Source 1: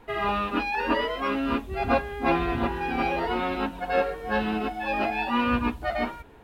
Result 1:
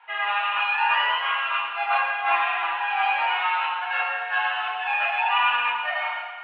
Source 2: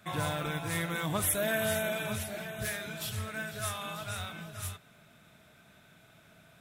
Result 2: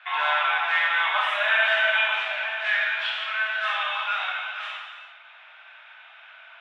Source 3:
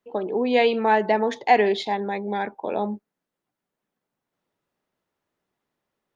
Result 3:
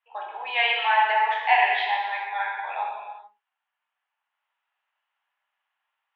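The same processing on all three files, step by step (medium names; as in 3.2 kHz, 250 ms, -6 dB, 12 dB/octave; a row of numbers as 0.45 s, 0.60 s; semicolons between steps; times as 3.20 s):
elliptic band-pass 810–3000 Hz, stop band 80 dB; treble shelf 2 kHz +8 dB; gated-style reverb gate 460 ms falling, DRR -3 dB; normalise loudness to -23 LUFS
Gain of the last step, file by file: 0.0 dB, +8.0 dB, -2.0 dB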